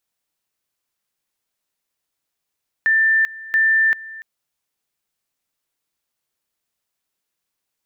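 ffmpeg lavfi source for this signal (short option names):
-f lavfi -i "aevalsrc='pow(10,(-12.5-19.5*gte(mod(t,0.68),0.39))/20)*sin(2*PI*1780*t)':d=1.36:s=44100"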